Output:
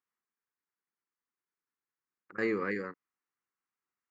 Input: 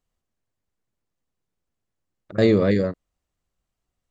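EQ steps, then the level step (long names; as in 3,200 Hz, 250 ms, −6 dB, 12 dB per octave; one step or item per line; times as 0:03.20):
band-pass filter 480–4,300 Hz
phaser with its sweep stopped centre 1,500 Hz, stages 4
−2.0 dB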